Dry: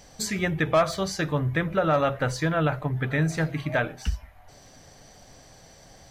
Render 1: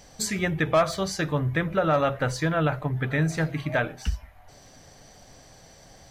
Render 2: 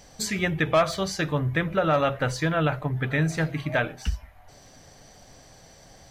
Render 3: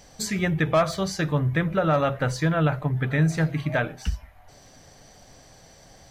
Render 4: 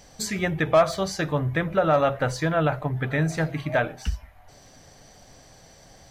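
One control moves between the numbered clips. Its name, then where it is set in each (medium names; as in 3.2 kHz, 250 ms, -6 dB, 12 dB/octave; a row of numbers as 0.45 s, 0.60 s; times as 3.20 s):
dynamic bell, frequency: 9.1 kHz, 2.9 kHz, 160 Hz, 700 Hz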